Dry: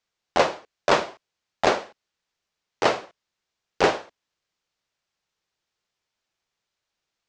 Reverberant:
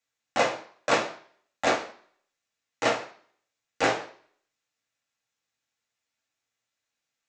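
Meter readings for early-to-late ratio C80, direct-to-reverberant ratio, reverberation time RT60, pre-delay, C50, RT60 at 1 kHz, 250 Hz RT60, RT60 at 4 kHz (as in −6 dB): 16.0 dB, −1.0 dB, 0.50 s, 3 ms, 12.0 dB, 0.55 s, 0.45 s, 0.50 s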